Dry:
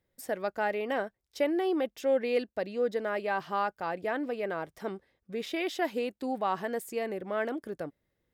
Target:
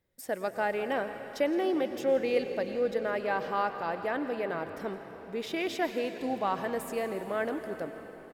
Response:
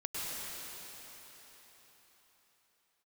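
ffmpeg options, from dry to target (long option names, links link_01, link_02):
-filter_complex "[0:a]asplit=5[link_01][link_02][link_03][link_04][link_05];[link_02]adelay=166,afreqshift=-65,volume=-17.5dB[link_06];[link_03]adelay=332,afreqshift=-130,volume=-23.3dB[link_07];[link_04]adelay=498,afreqshift=-195,volume=-29.2dB[link_08];[link_05]adelay=664,afreqshift=-260,volume=-35dB[link_09];[link_01][link_06][link_07][link_08][link_09]amix=inputs=5:normalize=0,asplit=2[link_10][link_11];[1:a]atrim=start_sample=2205[link_12];[link_11][link_12]afir=irnorm=-1:irlink=0,volume=-11dB[link_13];[link_10][link_13]amix=inputs=2:normalize=0,volume=-1.5dB"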